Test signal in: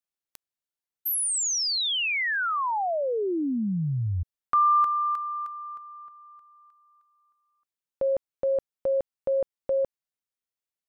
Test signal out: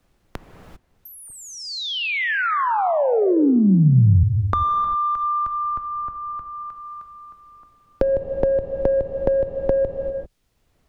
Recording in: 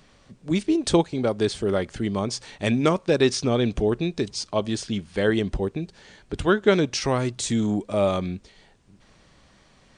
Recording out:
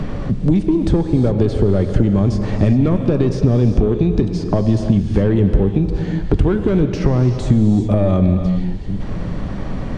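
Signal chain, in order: in parallel at -1.5 dB: limiter -16.5 dBFS; on the sum: soft clip -13.5 dBFS; compressor, threshold -26 dBFS; tilt -4.5 dB/oct; non-linear reverb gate 0.42 s flat, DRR 7 dB; three-band squash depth 70%; gain +4 dB

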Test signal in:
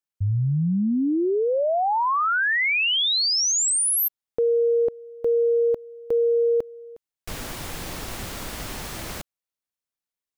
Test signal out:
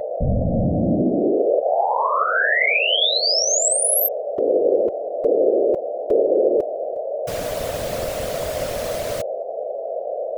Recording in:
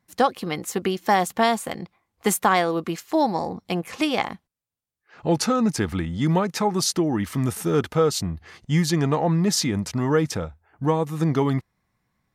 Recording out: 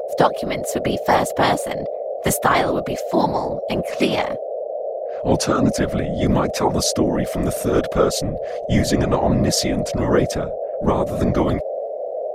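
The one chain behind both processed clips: whine 580 Hz -26 dBFS; whisperiser; gain +2.5 dB

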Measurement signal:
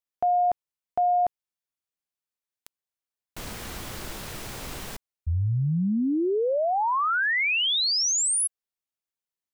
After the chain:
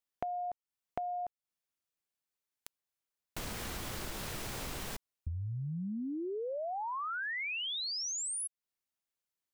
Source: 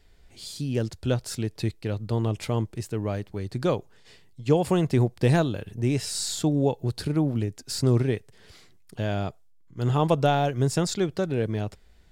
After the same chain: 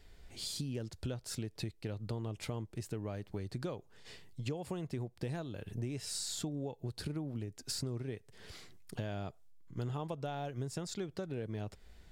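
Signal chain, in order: compressor 12:1, threshold -36 dBFS

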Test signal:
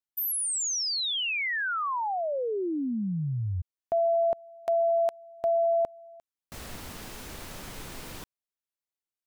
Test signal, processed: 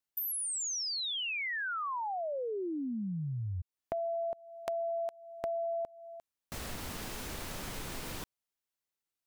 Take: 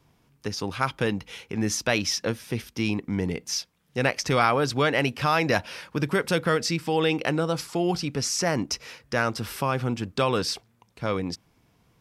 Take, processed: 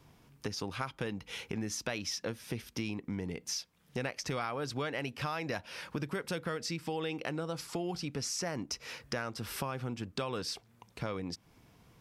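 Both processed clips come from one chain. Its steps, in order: compressor 4:1, threshold -38 dBFS; gain +2 dB

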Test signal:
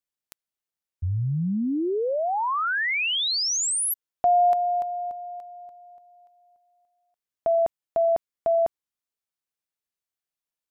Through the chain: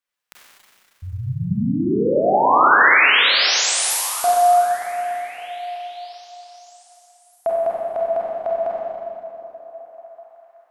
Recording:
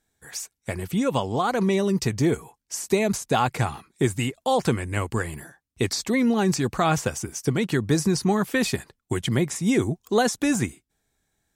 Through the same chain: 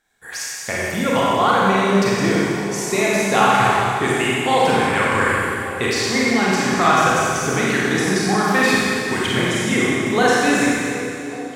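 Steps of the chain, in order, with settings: low shelf 170 Hz -3.5 dB; in parallel at +2 dB: vocal rider within 4 dB 0.5 s; on the sum: bell 1600 Hz +10.5 dB 2.6 oct; notches 50/100/150 Hz; on a send: delay with a stepping band-pass 0.38 s, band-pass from 220 Hz, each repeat 0.7 oct, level -9.5 dB; on the sum: Schroeder reverb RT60 2.5 s, combs from 31 ms, DRR -6.5 dB; gain -11 dB

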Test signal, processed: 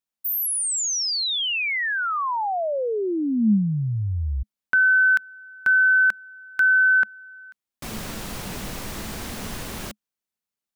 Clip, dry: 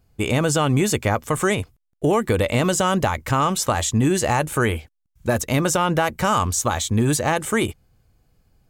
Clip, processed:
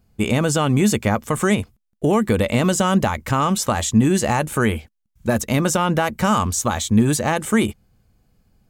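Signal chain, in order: bell 210 Hz +9 dB 0.34 oct

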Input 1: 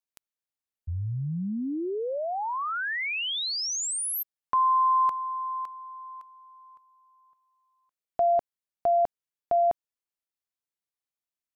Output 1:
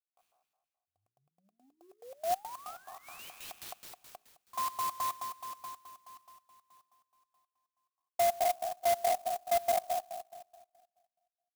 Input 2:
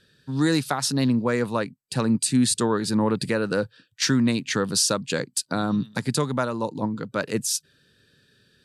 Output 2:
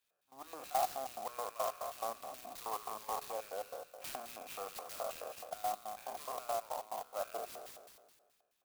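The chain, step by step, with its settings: spectral trails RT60 1.55 s; soft clip -14.5 dBFS; on a send: thin delay 61 ms, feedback 61%, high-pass 5200 Hz, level -3 dB; on the sum: LFO band-pass square 4.7 Hz 800–4500 Hz; vowel filter a; notches 60/120/180/240/300/360/420 Hz; in parallel at -12 dB: wrapped overs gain 26 dB; on the sum: clock jitter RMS 0.06 ms; gain +1.5 dB

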